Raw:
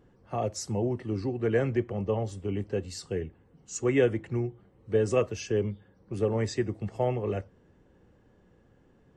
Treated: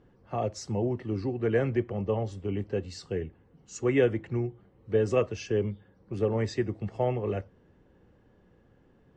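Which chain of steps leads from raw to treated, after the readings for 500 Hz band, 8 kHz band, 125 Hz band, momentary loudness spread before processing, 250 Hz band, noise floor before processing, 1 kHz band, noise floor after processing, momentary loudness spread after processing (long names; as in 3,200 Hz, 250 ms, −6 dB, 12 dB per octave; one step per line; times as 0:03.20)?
0.0 dB, −5.5 dB, 0.0 dB, 10 LU, 0.0 dB, −62 dBFS, 0.0 dB, −62 dBFS, 10 LU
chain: low-pass filter 5,300 Hz 12 dB per octave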